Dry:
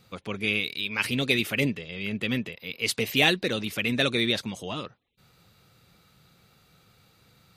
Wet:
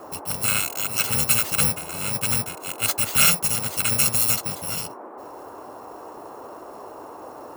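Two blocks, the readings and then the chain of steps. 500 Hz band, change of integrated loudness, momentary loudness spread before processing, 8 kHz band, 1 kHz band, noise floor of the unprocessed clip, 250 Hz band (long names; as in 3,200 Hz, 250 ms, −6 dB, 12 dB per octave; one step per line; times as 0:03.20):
−4.0 dB, +6.0 dB, 13 LU, +18.5 dB, +6.5 dB, −62 dBFS, −6.0 dB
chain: samples in bit-reversed order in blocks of 128 samples
noise in a band 270–1,100 Hz −44 dBFS
level +4.5 dB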